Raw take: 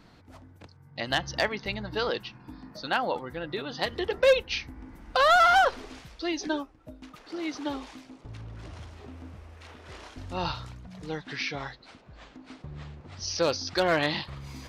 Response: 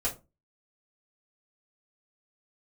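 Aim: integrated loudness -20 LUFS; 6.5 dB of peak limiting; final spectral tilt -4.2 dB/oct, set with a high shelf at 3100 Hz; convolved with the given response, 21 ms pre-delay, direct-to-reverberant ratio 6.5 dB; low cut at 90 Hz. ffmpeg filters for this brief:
-filter_complex "[0:a]highpass=90,highshelf=f=3.1k:g=-3,alimiter=limit=-19.5dB:level=0:latency=1,asplit=2[a][b];[1:a]atrim=start_sample=2205,adelay=21[c];[b][c]afir=irnorm=-1:irlink=0,volume=-12.5dB[d];[a][d]amix=inputs=2:normalize=0,volume=11dB"

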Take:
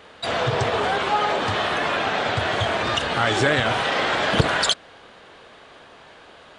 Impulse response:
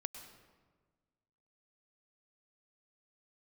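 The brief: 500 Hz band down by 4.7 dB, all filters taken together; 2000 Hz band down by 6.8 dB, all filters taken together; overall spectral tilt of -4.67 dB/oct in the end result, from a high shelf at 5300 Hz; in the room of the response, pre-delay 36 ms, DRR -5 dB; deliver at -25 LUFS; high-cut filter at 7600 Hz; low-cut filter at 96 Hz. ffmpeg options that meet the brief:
-filter_complex "[0:a]highpass=96,lowpass=7.6k,equalizer=f=500:t=o:g=-5.5,equalizer=f=2k:t=o:g=-8,highshelf=f=5.3k:g=-6.5,asplit=2[a][b];[1:a]atrim=start_sample=2205,adelay=36[c];[b][c]afir=irnorm=-1:irlink=0,volume=7dB[d];[a][d]amix=inputs=2:normalize=0,volume=-5.5dB"

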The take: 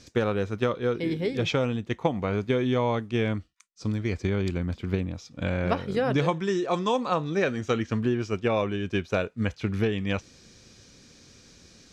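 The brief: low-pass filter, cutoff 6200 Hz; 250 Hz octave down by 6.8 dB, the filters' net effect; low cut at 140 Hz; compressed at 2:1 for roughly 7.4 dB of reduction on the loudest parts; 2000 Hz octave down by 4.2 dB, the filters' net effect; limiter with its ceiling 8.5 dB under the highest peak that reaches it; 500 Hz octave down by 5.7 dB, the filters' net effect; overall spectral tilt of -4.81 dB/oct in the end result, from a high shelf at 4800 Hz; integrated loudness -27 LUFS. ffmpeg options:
-af "highpass=140,lowpass=6.2k,equalizer=f=250:t=o:g=-7,equalizer=f=500:t=o:g=-4.5,equalizer=f=2k:t=o:g=-6,highshelf=f=4.8k:g=5,acompressor=threshold=-38dB:ratio=2,volume=13.5dB,alimiter=limit=-14.5dB:level=0:latency=1"

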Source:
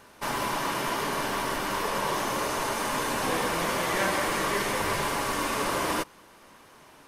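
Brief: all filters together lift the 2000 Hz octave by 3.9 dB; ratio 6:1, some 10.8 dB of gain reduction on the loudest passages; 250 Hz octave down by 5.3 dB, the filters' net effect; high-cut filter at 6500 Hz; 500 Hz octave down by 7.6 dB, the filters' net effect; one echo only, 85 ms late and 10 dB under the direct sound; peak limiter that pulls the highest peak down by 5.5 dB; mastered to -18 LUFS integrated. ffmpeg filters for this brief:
-af "lowpass=6.5k,equalizer=f=250:t=o:g=-4,equalizer=f=500:t=o:g=-9,equalizer=f=2k:t=o:g=5.5,acompressor=threshold=-34dB:ratio=6,alimiter=level_in=5dB:limit=-24dB:level=0:latency=1,volume=-5dB,aecho=1:1:85:0.316,volume=19dB"

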